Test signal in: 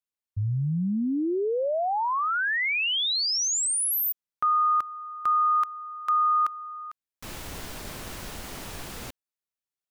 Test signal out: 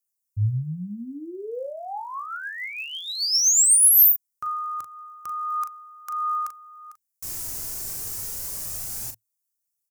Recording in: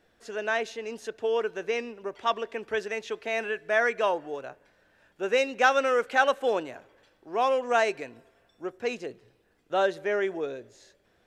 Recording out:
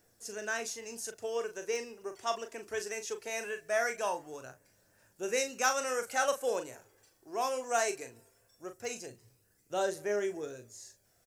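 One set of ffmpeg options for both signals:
ffmpeg -i in.wav -filter_complex "[0:a]equalizer=frequency=110:width_type=o:width=0.42:gain=11,aphaser=in_gain=1:out_gain=1:delay=3.1:decay=0.32:speed=0.2:type=triangular,asplit=2[link_01][link_02];[link_02]adelay=39,volume=-8.5dB[link_03];[link_01][link_03]amix=inputs=2:normalize=0,aexciter=amount=4.6:drive=9:freq=5100,volume=-8.5dB" out.wav

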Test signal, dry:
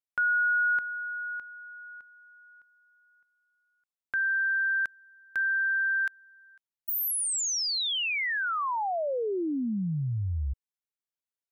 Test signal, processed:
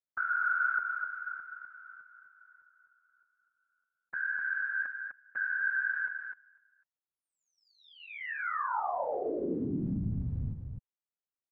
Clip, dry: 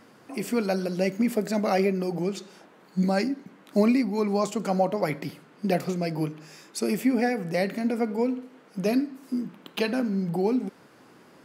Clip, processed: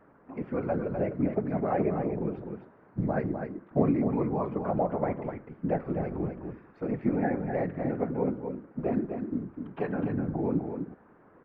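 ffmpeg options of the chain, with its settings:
ffmpeg -i in.wav -af "lowpass=frequency=1700:width=0.5412,lowpass=frequency=1700:width=1.3066,afftfilt=real='hypot(re,im)*cos(2*PI*random(0))':imag='hypot(re,im)*sin(2*PI*random(1))':win_size=512:overlap=0.75,aecho=1:1:252:0.473,volume=1.5dB" out.wav

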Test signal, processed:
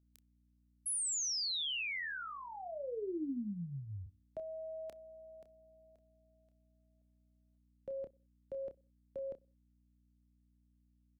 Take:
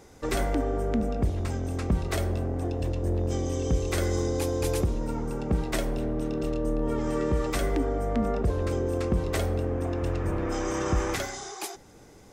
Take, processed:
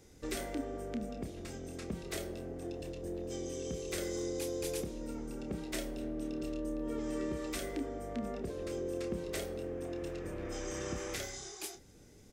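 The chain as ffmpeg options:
ffmpeg -i in.wav -filter_complex "[0:a]equalizer=frequency=960:width_type=o:width=1.5:gain=-11.5,acrossover=split=240|1600[link_01][link_02][link_03];[link_01]acompressor=threshold=-40dB:ratio=5[link_04];[link_04][link_02][link_03]amix=inputs=3:normalize=0,aeval=exprs='val(0)+0.000562*(sin(2*PI*60*n/s)+sin(2*PI*2*60*n/s)/2+sin(2*PI*3*60*n/s)/3+sin(2*PI*4*60*n/s)/4+sin(2*PI*5*60*n/s)/5)':channel_layout=same,asplit=2[link_05][link_06];[link_06]adelay=29,volume=-8dB[link_07];[link_05][link_07]amix=inputs=2:normalize=0,asplit=2[link_08][link_09];[link_09]adelay=63,lowpass=frequency=820:poles=1,volume=-23.5dB,asplit=2[link_10][link_11];[link_11]adelay=63,lowpass=frequency=820:poles=1,volume=0.44,asplit=2[link_12][link_13];[link_13]adelay=63,lowpass=frequency=820:poles=1,volume=0.44[link_14];[link_08][link_10][link_12][link_14]amix=inputs=4:normalize=0,volume=-5.5dB" out.wav

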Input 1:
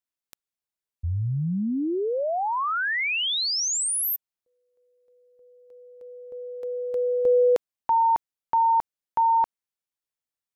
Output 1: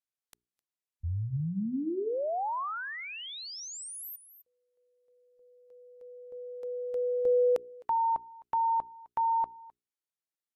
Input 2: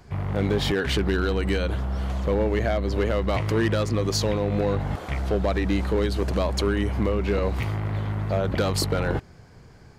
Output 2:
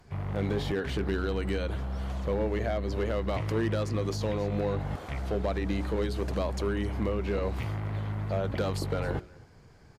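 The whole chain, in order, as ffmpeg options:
ffmpeg -i in.wav -filter_complex "[0:a]bandreject=frequency=60:width_type=h:width=6,bandreject=frequency=120:width_type=h:width=6,bandreject=frequency=180:width_type=h:width=6,bandreject=frequency=240:width_type=h:width=6,bandreject=frequency=300:width_type=h:width=6,bandreject=frequency=360:width_type=h:width=6,bandreject=frequency=420:width_type=h:width=6,aecho=1:1:259:0.0631,aresample=32000,aresample=44100,acrossover=split=1100[link_01][link_02];[link_02]acompressor=threshold=-39dB:ratio=6:attack=26:release=29:knee=6:detection=peak[link_03];[link_01][link_03]amix=inputs=2:normalize=0,volume=-5.5dB" -ar 44100 -c:a libvorbis -b:a 96k out.ogg

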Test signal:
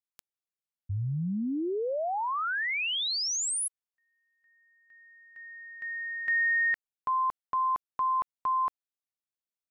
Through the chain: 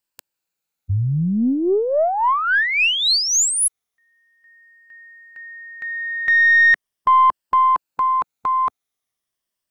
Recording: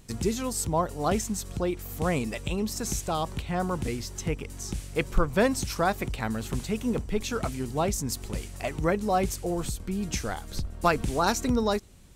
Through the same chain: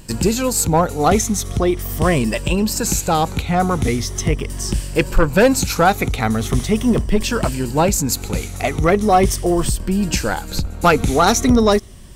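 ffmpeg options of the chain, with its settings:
ffmpeg -i in.wav -af "afftfilt=real='re*pow(10,7/40*sin(2*PI*(1.3*log(max(b,1)*sr/1024/100)/log(2)-(-0.4)*(pts-256)/sr)))':imag='im*pow(10,7/40*sin(2*PI*(1.3*log(max(b,1)*sr/1024/100)/log(2)-(-0.4)*(pts-256)/sr)))':win_size=1024:overlap=0.75,aeval=exprs='0.398*(cos(1*acos(clip(val(0)/0.398,-1,1)))-cos(1*PI/2))+0.0501*(cos(5*acos(clip(val(0)/0.398,-1,1)))-cos(5*PI/2))+0.0141*(cos(6*acos(clip(val(0)/0.398,-1,1)))-cos(6*PI/2))':channel_layout=same,volume=7.5dB" out.wav

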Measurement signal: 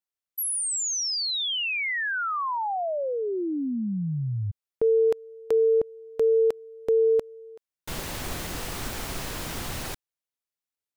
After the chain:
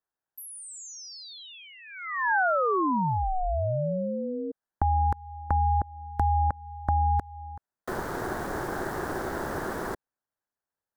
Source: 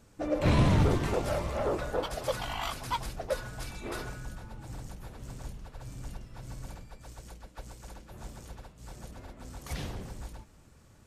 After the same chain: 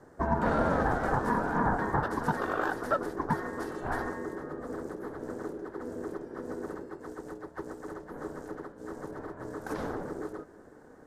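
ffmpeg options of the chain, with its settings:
ffmpeg -i in.wav -filter_complex "[0:a]acrossover=split=240|650[link_01][link_02][link_03];[link_01]acompressor=threshold=-38dB:ratio=4[link_04];[link_02]acompressor=threshold=-34dB:ratio=6[link_05];[link_03]acompressor=threshold=-37dB:ratio=3[link_06];[link_04][link_05][link_06]amix=inputs=3:normalize=0,highshelf=frequency=1700:width_type=q:width=3:gain=-10.5,aeval=exprs='val(0)*sin(2*PI*370*n/s)':channel_layout=same,volume=7dB" out.wav

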